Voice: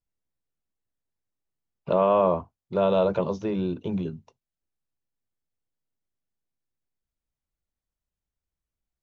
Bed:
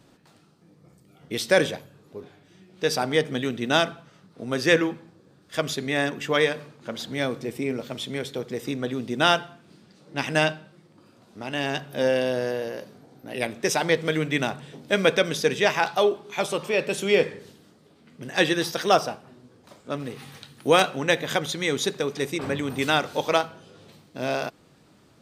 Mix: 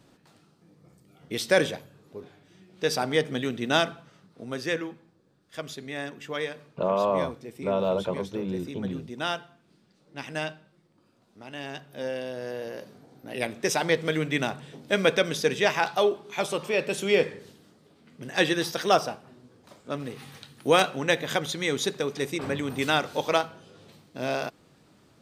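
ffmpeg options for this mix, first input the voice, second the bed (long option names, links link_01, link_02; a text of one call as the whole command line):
ffmpeg -i stem1.wav -i stem2.wav -filter_complex "[0:a]adelay=4900,volume=-4dB[link_01];[1:a]volume=6dB,afade=type=out:start_time=4.1:duration=0.64:silence=0.398107,afade=type=in:start_time=12.36:duration=0.54:silence=0.398107[link_02];[link_01][link_02]amix=inputs=2:normalize=0" out.wav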